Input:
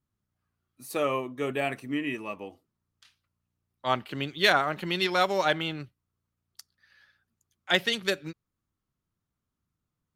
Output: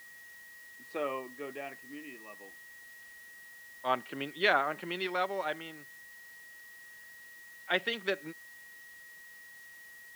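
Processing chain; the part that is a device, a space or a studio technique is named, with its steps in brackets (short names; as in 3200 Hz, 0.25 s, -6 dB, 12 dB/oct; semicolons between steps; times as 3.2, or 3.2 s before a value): shortwave radio (BPF 250–2800 Hz; tremolo 0.24 Hz, depth 74%; whine 1900 Hz -47 dBFS; white noise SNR 21 dB); gain -3 dB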